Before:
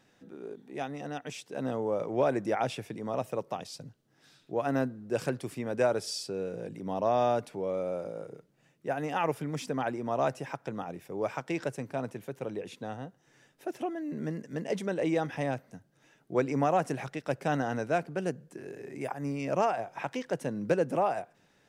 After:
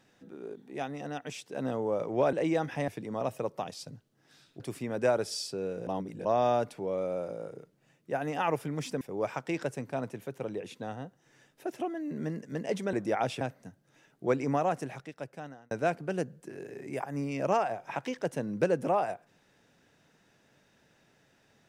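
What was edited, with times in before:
0:02.33–0:02.81: swap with 0:14.94–0:15.49
0:04.53–0:05.36: remove
0:06.63–0:07.01: reverse
0:09.77–0:11.02: remove
0:16.42–0:17.79: fade out

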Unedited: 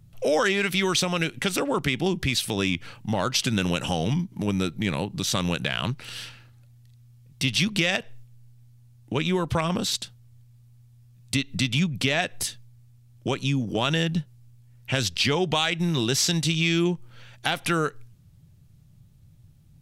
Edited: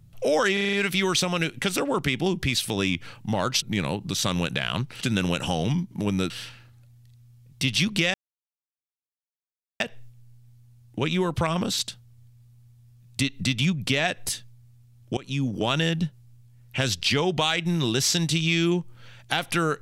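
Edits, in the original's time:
0:00.53: stutter 0.04 s, 6 plays
0:03.42–0:04.71: move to 0:06.10
0:07.94: splice in silence 1.66 s
0:13.31–0:13.59: fade in, from −20 dB

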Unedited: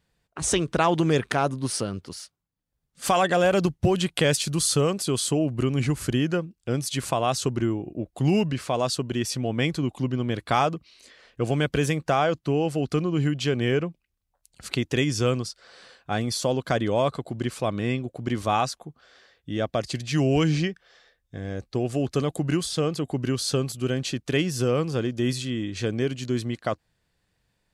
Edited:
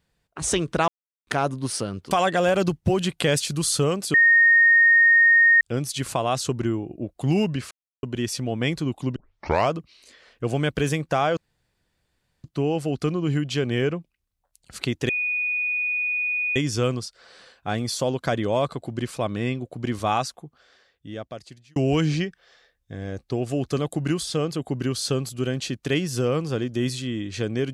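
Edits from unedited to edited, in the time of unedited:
0:00.88–0:01.27: silence
0:02.11–0:03.08: remove
0:05.11–0:06.58: beep over 1,850 Hz −12 dBFS
0:08.68–0:09.00: silence
0:10.13: tape start 0.55 s
0:12.34: splice in room tone 1.07 s
0:14.99: insert tone 2,470 Hz −22 dBFS 1.47 s
0:18.74–0:20.19: fade out

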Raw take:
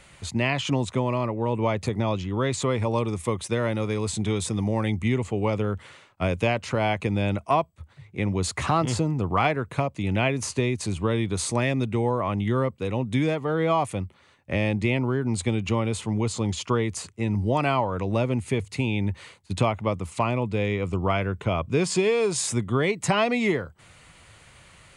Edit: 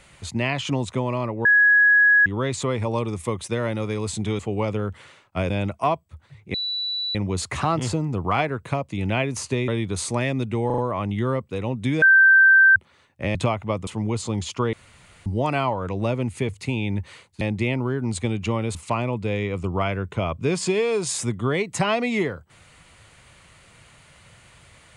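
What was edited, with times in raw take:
0:01.45–0:02.26: beep over 1,670 Hz −12 dBFS
0:04.39–0:05.24: remove
0:06.35–0:07.17: remove
0:08.21: insert tone 3,950 Hz −24 dBFS 0.61 s
0:10.74–0:11.09: remove
0:12.07: stutter 0.04 s, 4 plays
0:13.31–0:14.05: beep over 1,560 Hz −10 dBFS
0:14.64–0:15.98: swap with 0:19.52–0:20.04
0:16.84–0:17.37: fill with room tone

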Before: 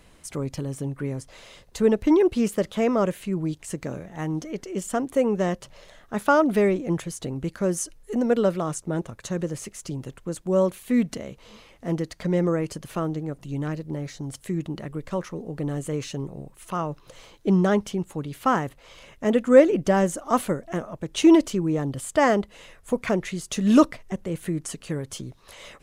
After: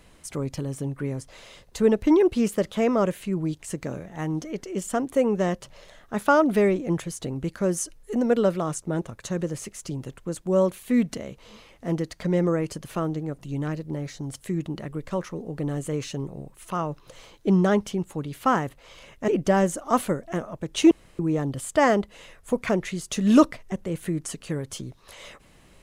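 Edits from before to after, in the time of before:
0:19.28–0:19.68: remove
0:21.31–0:21.59: fill with room tone

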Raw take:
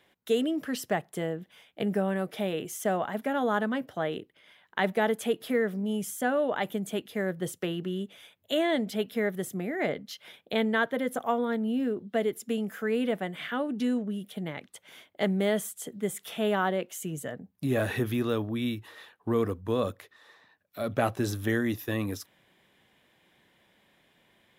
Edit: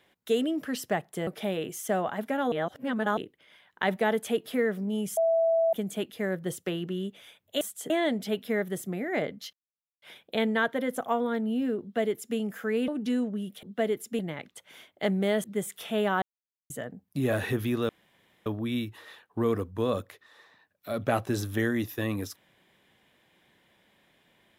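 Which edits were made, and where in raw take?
0:01.27–0:02.23: remove
0:03.48–0:04.13: reverse
0:06.13–0:06.69: beep over 659 Hz −20.5 dBFS
0:10.20: splice in silence 0.49 s
0:11.99–0:12.55: duplicate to 0:14.37
0:13.06–0:13.62: remove
0:15.62–0:15.91: move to 0:08.57
0:16.69–0:17.17: silence
0:18.36: splice in room tone 0.57 s

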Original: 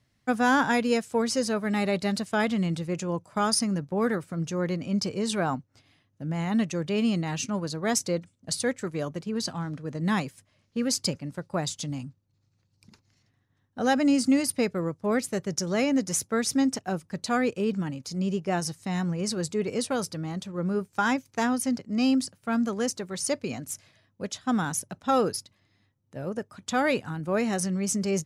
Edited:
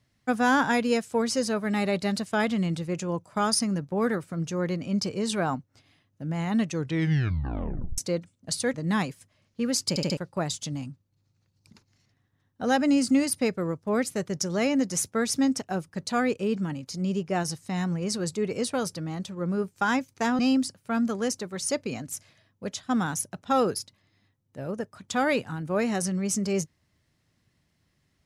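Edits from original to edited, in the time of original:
0:06.70: tape stop 1.28 s
0:08.74–0:09.91: remove
0:11.06: stutter in place 0.07 s, 4 plays
0:21.56–0:21.97: remove

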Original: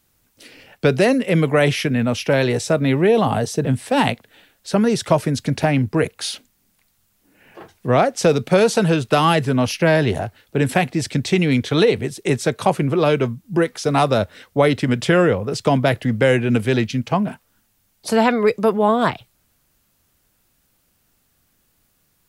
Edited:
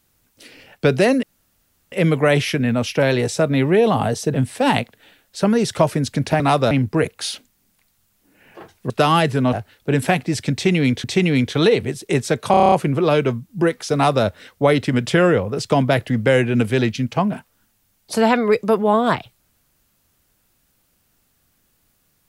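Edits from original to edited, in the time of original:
0:01.23: splice in room tone 0.69 s
0:07.90–0:09.03: remove
0:09.66–0:10.20: remove
0:11.20–0:11.71: repeat, 2 plays
0:12.67: stutter 0.03 s, 8 plays
0:13.89–0:14.20: duplicate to 0:05.71

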